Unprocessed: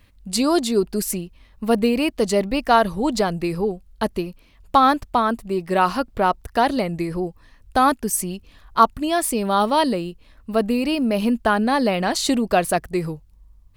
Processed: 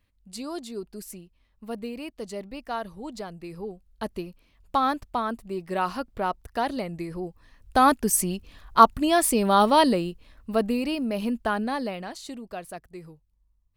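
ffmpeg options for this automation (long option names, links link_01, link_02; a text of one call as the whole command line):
ffmpeg -i in.wav -af "afade=type=in:start_time=3.42:duration=0.77:silence=0.421697,afade=type=in:start_time=7.19:duration=0.88:silence=0.375837,afade=type=out:start_time=9.84:duration=1.21:silence=0.421697,afade=type=out:start_time=11.57:duration=0.62:silence=0.281838" out.wav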